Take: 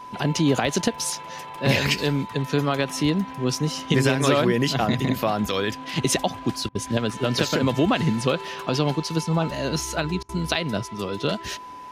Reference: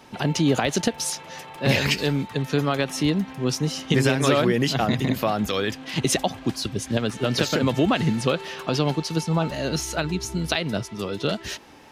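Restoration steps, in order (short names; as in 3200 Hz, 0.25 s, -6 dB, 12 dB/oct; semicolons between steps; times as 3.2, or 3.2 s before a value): notch 1000 Hz, Q 30; interpolate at 6.69/10.23, 59 ms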